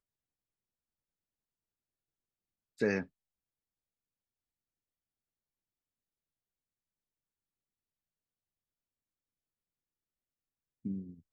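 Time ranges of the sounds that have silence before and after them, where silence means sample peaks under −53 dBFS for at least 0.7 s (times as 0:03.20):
0:02.78–0:03.06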